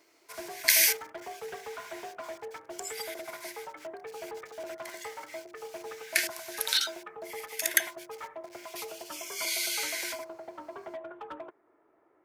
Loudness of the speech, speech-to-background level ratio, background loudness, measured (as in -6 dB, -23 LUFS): -28.5 LUFS, 15.0 dB, -43.5 LUFS